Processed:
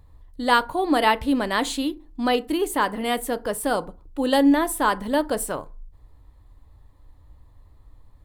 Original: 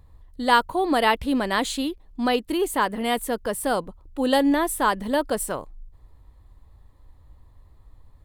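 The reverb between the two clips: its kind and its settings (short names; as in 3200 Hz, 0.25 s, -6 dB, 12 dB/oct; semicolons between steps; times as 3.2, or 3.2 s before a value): FDN reverb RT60 0.34 s, low-frequency decay 1.1×, high-frequency decay 0.55×, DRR 12.5 dB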